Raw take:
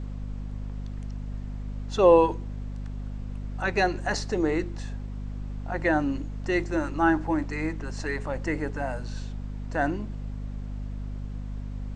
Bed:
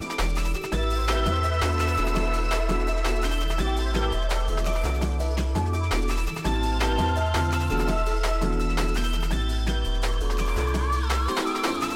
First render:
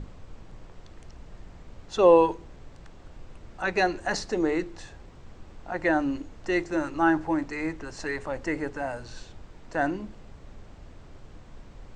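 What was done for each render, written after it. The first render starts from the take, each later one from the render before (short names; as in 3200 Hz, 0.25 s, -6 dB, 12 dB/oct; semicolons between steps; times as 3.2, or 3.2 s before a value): notches 50/100/150/200/250 Hz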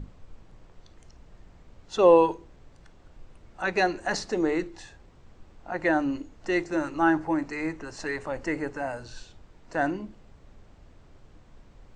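noise print and reduce 6 dB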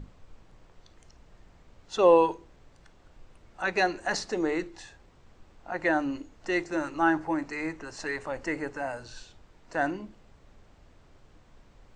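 low shelf 470 Hz -4.5 dB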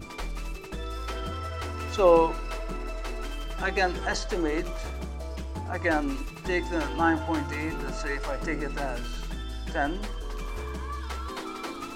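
add bed -10.5 dB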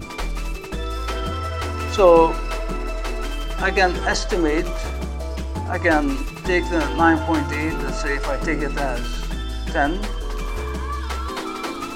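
gain +8 dB; limiter -3 dBFS, peak gain reduction 3 dB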